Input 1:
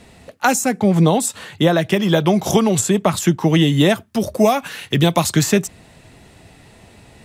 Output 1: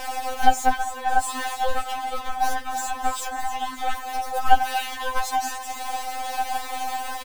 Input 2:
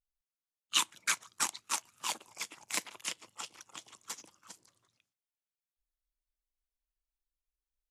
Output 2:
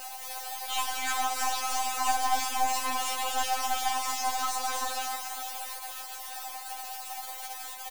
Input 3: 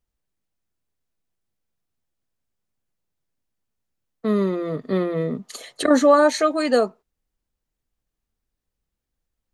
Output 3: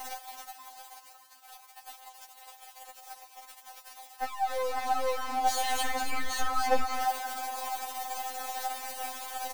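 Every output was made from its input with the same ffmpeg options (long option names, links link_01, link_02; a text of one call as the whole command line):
ffmpeg -i in.wav -filter_complex "[0:a]aeval=exprs='val(0)+0.5*0.133*sgn(val(0))':channel_layout=same,acompressor=threshold=-18dB:ratio=2.5,volume=16dB,asoftclip=hard,volume=-16dB,highpass=frequency=740:width_type=q:width=8.8,aeval=exprs='1.33*(cos(1*acos(clip(val(0)/1.33,-1,1)))-cos(1*PI/2))+0.335*(cos(4*acos(clip(val(0)/1.33,-1,1)))-cos(4*PI/2))':channel_layout=same,asplit=2[link_01][link_02];[link_02]asplit=6[link_03][link_04][link_05][link_06][link_07][link_08];[link_03]adelay=275,afreqshift=100,volume=-9dB[link_09];[link_04]adelay=550,afreqshift=200,volume=-14.7dB[link_10];[link_05]adelay=825,afreqshift=300,volume=-20.4dB[link_11];[link_06]adelay=1100,afreqshift=400,volume=-26dB[link_12];[link_07]adelay=1375,afreqshift=500,volume=-31.7dB[link_13];[link_08]adelay=1650,afreqshift=600,volume=-37.4dB[link_14];[link_09][link_10][link_11][link_12][link_13][link_14]amix=inputs=6:normalize=0[link_15];[link_01][link_15]amix=inputs=2:normalize=0,afftfilt=real='re*3.46*eq(mod(b,12),0)':imag='im*3.46*eq(mod(b,12),0)':win_size=2048:overlap=0.75,volume=-9.5dB" out.wav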